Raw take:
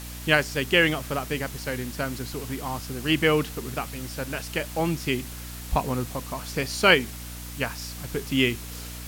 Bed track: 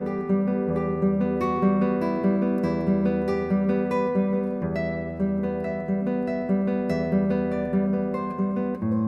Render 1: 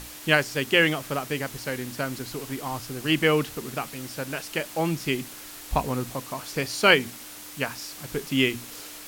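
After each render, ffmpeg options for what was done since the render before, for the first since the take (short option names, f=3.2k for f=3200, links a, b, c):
-af "bandreject=f=60:t=h:w=6,bandreject=f=120:t=h:w=6,bandreject=f=180:t=h:w=6,bandreject=f=240:t=h:w=6"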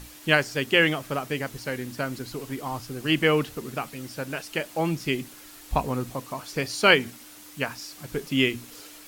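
-af "afftdn=nr=6:nf=-42"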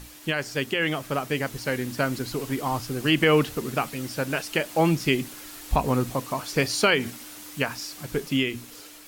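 -af "alimiter=limit=-14.5dB:level=0:latency=1:release=128,dynaudnorm=f=420:g=7:m=5dB"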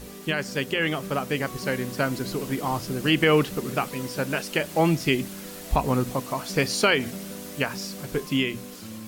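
-filter_complex "[1:a]volume=-15.5dB[a];[0:a][a]amix=inputs=2:normalize=0"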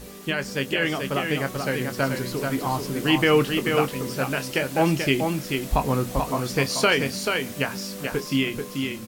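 -filter_complex "[0:a]asplit=2[a][b];[b]adelay=22,volume=-10.5dB[c];[a][c]amix=inputs=2:normalize=0,aecho=1:1:436:0.562"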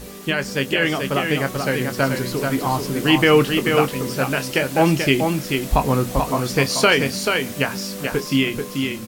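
-af "volume=4.5dB"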